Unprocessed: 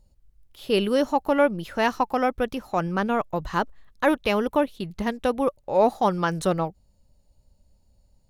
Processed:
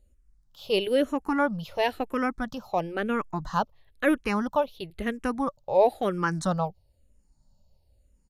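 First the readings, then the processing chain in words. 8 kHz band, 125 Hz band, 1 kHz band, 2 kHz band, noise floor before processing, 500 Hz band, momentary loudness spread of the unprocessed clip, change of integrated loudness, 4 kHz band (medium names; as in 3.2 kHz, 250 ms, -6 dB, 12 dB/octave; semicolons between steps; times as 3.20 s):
-2.5 dB, -2.5 dB, -4.0 dB, -2.0 dB, -63 dBFS, -3.0 dB, 7 LU, -3.0 dB, -2.0 dB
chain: resampled via 32 kHz; barber-pole phaser -1 Hz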